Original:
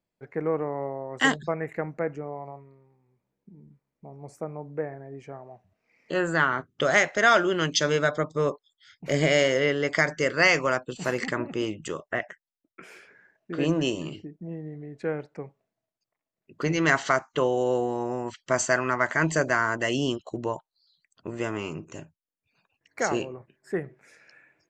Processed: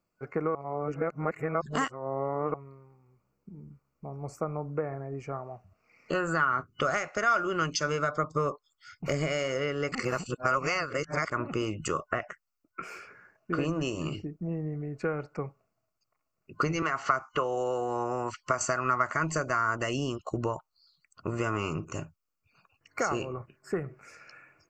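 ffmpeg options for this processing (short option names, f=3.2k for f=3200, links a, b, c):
-filter_complex "[0:a]asettb=1/sr,asplit=3[a][b][c];[a]atrim=end=16.824[d];[b]atrim=start=16.82:end=18.61,asetpts=PTS-STARTPTS,afade=t=in:d=0.004:c=qsin,afade=t=out:st=1.786:d=0.004:c=qsin,acrossover=split=410|3200[e][f][g];[e]acompressor=threshold=-38dB:ratio=4[h];[f]acompressor=threshold=-23dB:ratio=4[i];[g]acompressor=threshold=-49dB:ratio=4[j];[h][i][j]amix=inputs=3:normalize=0[k];[c]atrim=start=18.606[l];[d][k]acrossfade=d=0.004:c1=hsin:c2=qsin[m];[m][l]acrossfade=d=0.004:c1=qsin:c2=hsin,asplit=5[n][o][p][q][r];[n]atrim=end=0.552[s];[o]atrim=start=0.548:end=2.542,asetpts=PTS-STARTPTS,areverse[t];[p]atrim=start=2.538:end=9.922[u];[q]atrim=start=9.918:end=11.312,asetpts=PTS-STARTPTS,areverse[v];[r]atrim=start=11.308[w];[s][t]acrossfade=d=0.004:c1=hsin:c2=hsin[x];[x][u]acrossfade=d=0.004:c1=hsin:c2=hsin[y];[y][v]acrossfade=d=0.004:c1=hsin:c2=hsin[z];[z][w]acrossfade=d=0.004:c1=hsin:c2=hsin,asubboost=boost=2.5:cutoff=120,acompressor=threshold=-30dB:ratio=10,superequalizer=10b=2.51:11b=0.631:13b=0.282:16b=0.447,volume=4dB"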